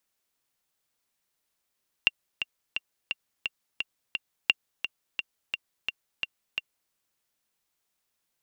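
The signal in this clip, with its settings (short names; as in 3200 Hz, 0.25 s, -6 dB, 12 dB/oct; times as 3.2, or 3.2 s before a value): metronome 173 bpm, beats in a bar 7, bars 2, 2770 Hz, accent 9.5 dB -6 dBFS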